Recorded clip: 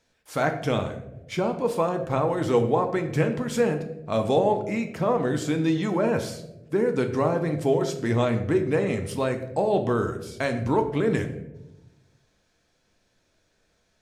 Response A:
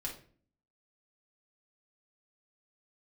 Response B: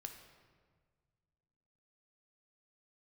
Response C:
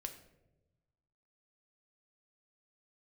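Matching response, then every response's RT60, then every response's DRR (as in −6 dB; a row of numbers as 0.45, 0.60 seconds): C; 0.45, 1.6, 1.0 seconds; −2.5, 4.0, 5.5 decibels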